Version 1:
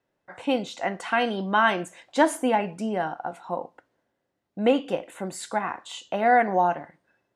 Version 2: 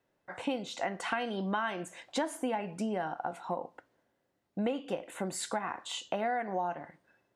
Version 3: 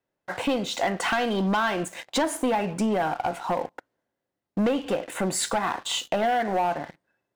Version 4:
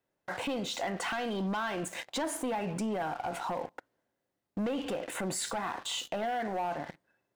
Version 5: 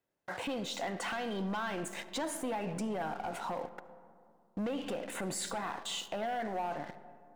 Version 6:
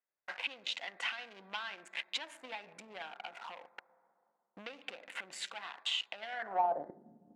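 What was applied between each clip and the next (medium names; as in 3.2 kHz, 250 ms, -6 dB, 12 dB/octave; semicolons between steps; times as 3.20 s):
compression 6:1, threshold -30 dBFS, peak gain reduction 15 dB
waveshaping leveller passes 3
peak limiter -27.5 dBFS, peak gain reduction 11.5 dB
algorithmic reverb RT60 2.5 s, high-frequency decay 0.3×, pre-delay 30 ms, DRR 14 dB; trim -3 dB
local Wiener filter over 15 samples; band-pass sweep 2.7 kHz -> 220 Hz, 6.25–7.08 s; transient shaper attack +7 dB, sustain -3 dB; trim +6.5 dB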